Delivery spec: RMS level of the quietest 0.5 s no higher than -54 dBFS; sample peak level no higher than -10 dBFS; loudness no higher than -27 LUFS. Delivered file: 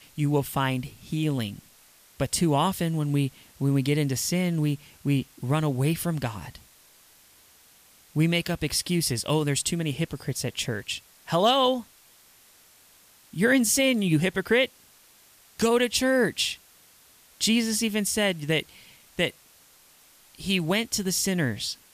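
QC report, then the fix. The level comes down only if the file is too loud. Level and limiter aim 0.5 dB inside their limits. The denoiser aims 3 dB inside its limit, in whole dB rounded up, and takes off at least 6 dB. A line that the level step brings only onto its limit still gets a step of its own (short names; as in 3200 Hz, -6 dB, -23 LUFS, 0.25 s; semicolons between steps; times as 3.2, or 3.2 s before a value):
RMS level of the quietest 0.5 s -56 dBFS: OK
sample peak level -9.0 dBFS: fail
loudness -25.5 LUFS: fail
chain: gain -2 dB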